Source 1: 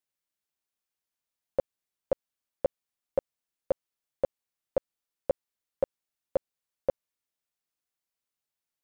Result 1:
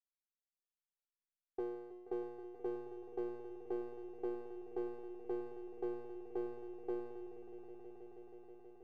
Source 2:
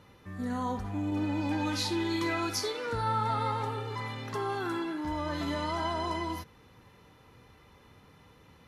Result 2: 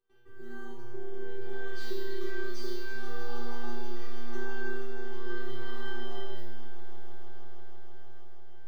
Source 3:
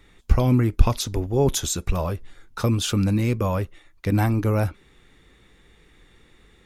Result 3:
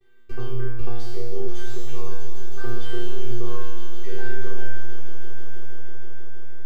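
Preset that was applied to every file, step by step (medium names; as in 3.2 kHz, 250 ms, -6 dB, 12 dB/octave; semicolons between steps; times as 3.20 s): median filter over 5 samples; gate with hold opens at -47 dBFS; peaking EQ 340 Hz +10.5 dB 1 oct; band-stop 650 Hz, Q 21; in parallel at -2.5 dB: compression, threshold -25 dBFS; on the sum: robot voice 390 Hz; feedback comb 120 Hz, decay 1.2 s, harmonics all, mix 100%; on a send: echo with a slow build-up 160 ms, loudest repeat 5, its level -15 dB; on the sum: slew-rate limiter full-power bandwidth 9.6 Hz; trim +9.5 dB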